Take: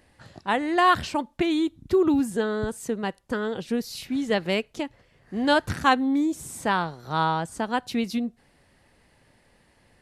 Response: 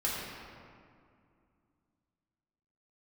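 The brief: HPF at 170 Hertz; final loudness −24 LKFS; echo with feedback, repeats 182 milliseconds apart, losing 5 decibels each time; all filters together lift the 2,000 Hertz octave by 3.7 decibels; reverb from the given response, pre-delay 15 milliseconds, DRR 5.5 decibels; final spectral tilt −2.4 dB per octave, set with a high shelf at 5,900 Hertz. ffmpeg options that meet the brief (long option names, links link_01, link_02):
-filter_complex "[0:a]highpass=170,equalizer=frequency=2000:width_type=o:gain=5.5,highshelf=frequency=5900:gain=-6.5,aecho=1:1:182|364|546|728|910|1092|1274:0.562|0.315|0.176|0.0988|0.0553|0.031|0.0173,asplit=2[link_01][link_02];[1:a]atrim=start_sample=2205,adelay=15[link_03];[link_02][link_03]afir=irnorm=-1:irlink=0,volume=-12.5dB[link_04];[link_01][link_04]amix=inputs=2:normalize=0,volume=-1.5dB"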